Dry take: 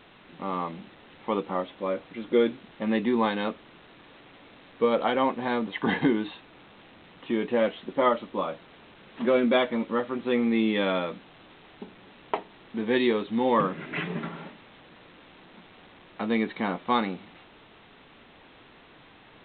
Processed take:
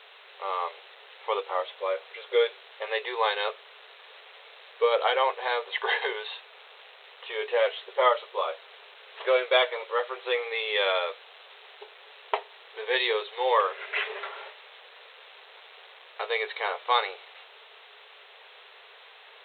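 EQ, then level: brick-wall FIR high-pass 390 Hz; treble shelf 2.5 kHz +10 dB; 0.0 dB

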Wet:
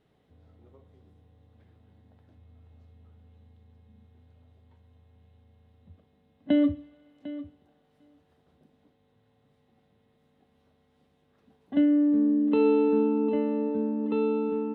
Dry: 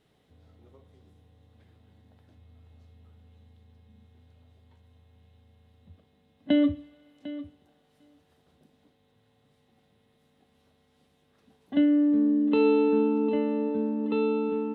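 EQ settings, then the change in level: treble shelf 3.1 kHz -10.5 dB; 0.0 dB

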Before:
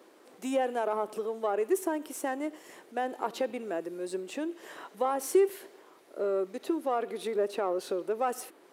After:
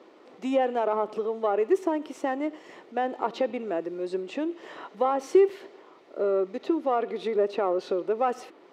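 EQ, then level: distance through air 190 m; treble shelf 5.8 kHz +5.5 dB; band-stop 1.6 kHz, Q 10; +5.0 dB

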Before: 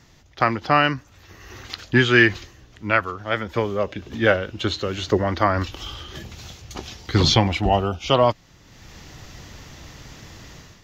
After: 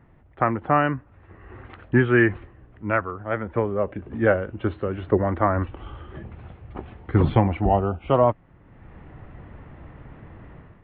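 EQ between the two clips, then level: Gaussian low-pass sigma 4.8 samples; 0.0 dB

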